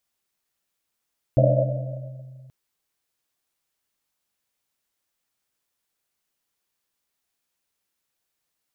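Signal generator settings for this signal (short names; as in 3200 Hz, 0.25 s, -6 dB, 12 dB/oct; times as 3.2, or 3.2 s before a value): Risset drum length 1.13 s, pitch 130 Hz, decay 2.52 s, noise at 590 Hz, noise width 130 Hz, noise 50%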